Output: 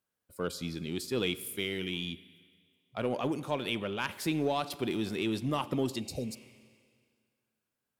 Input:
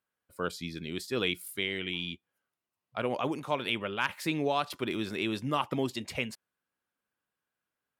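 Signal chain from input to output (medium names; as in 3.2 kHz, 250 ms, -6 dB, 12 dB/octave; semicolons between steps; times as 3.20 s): peaking EQ 1.5 kHz -7 dB 2.4 oct; Schroeder reverb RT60 1.9 s, combs from 32 ms, DRR 17.5 dB; in parallel at -6 dB: saturation -35.5 dBFS, distortion -7 dB; on the sum: spectral replace 6.03–6.37 s, 860–3600 Hz after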